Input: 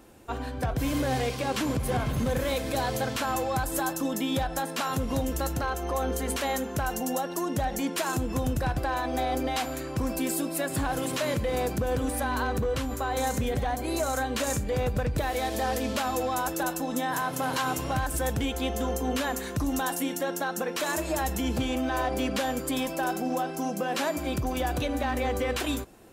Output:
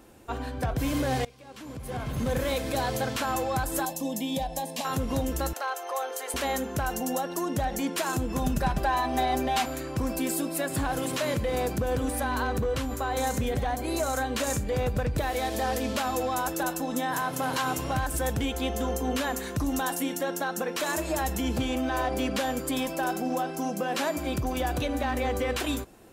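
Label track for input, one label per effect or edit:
1.250000	2.330000	fade in quadratic, from -22 dB
3.850000	4.850000	fixed phaser centre 370 Hz, stages 6
5.530000	6.340000	HPF 530 Hz 24 dB/oct
8.370000	9.660000	comb 5 ms, depth 86%

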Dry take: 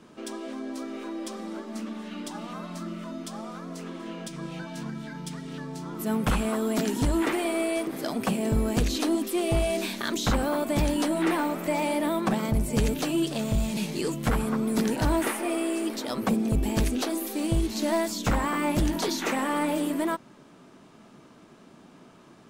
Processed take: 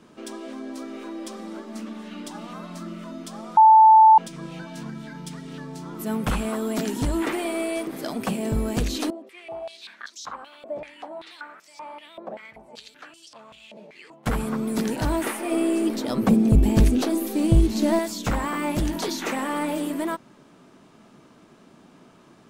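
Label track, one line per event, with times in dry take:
3.570000	4.180000	bleep 879 Hz -8.5 dBFS
9.100000	14.260000	stepped band-pass 5.2 Hz 580–5500 Hz
15.510000	17.990000	low shelf 460 Hz +9.5 dB

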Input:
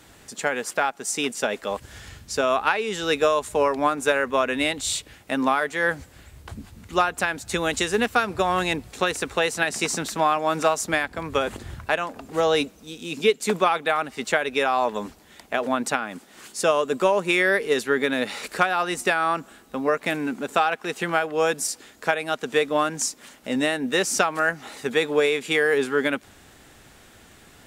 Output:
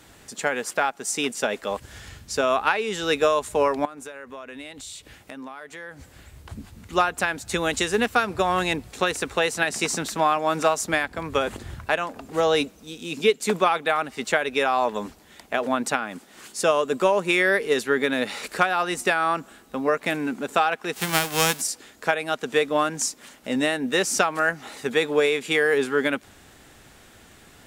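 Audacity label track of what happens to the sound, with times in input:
3.850000	6.510000	compressor 4:1, threshold -38 dBFS
20.930000	21.600000	spectral whitening exponent 0.3

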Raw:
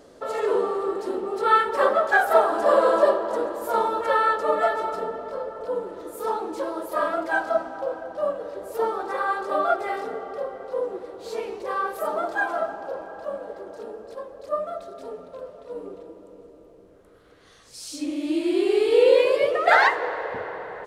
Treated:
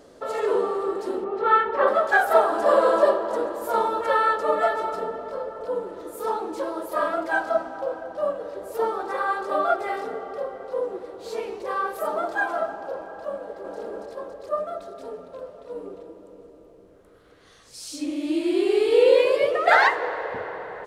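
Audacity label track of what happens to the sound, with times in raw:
1.240000	1.880000	LPF 2600 Hz
13.360000	13.770000	echo throw 0.28 s, feedback 65%, level -0.5 dB

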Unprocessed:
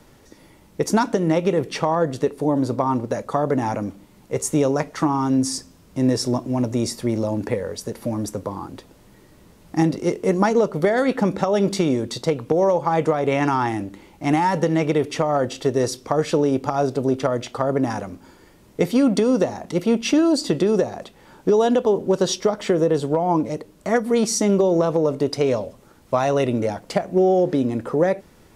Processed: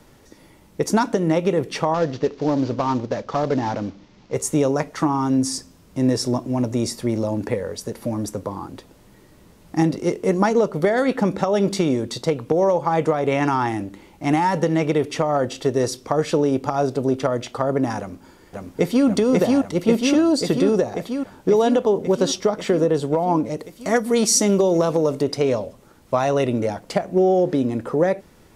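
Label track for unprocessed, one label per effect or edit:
1.940000	4.340000	CVSD 32 kbps
17.990000	19.070000	echo throw 0.54 s, feedback 75%, level -1 dB
23.590000	25.220000	high shelf 3400 Hz +8 dB

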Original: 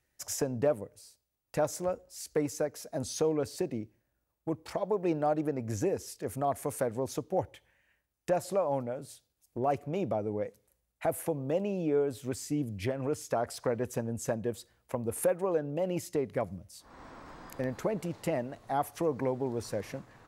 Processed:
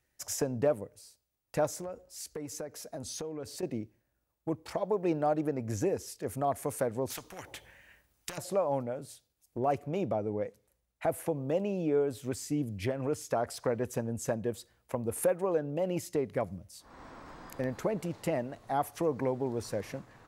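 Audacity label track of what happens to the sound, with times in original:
1.680000	3.630000	compressor 5:1, threshold -36 dBFS
7.100000	8.380000	spectral compressor 4:1
10.060000	11.360000	high shelf 8000 Hz -5.5 dB

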